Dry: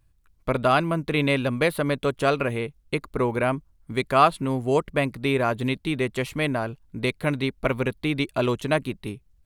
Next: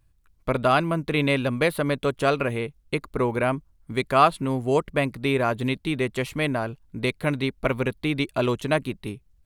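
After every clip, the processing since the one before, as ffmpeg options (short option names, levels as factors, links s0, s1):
-af anull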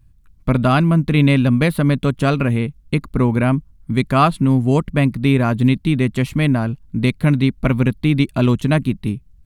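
-af "lowshelf=f=310:t=q:w=1.5:g=9,volume=1.41"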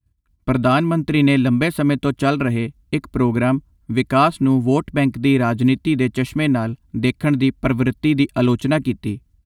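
-af "agate=range=0.0224:threshold=0.00891:ratio=3:detection=peak,highpass=61,aecho=1:1:3:0.45,volume=0.891"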